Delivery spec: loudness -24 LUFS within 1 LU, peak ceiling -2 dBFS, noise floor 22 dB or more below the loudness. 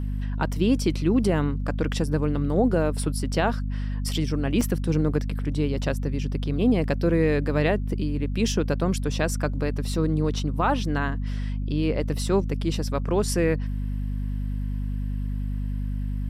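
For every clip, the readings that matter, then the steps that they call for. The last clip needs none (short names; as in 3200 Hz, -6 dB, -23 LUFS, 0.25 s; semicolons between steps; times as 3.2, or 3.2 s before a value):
dropouts 1; longest dropout 4.0 ms; hum 50 Hz; harmonics up to 250 Hz; hum level -25 dBFS; loudness -25.5 LUFS; peak -10.5 dBFS; loudness target -24.0 LUFS
-> interpolate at 4.61, 4 ms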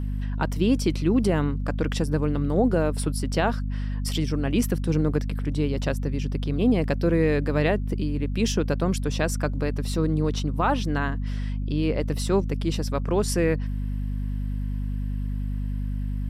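dropouts 0; hum 50 Hz; harmonics up to 250 Hz; hum level -25 dBFS
-> notches 50/100/150/200/250 Hz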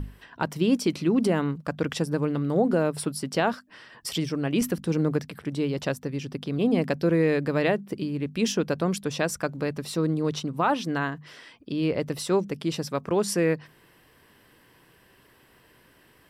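hum none; loudness -26.5 LUFS; peak -11.0 dBFS; loudness target -24.0 LUFS
-> gain +2.5 dB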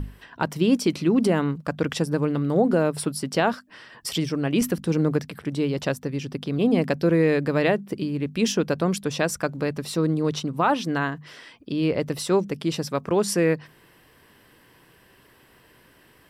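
loudness -24.0 LUFS; peak -8.5 dBFS; noise floor -56 dBFS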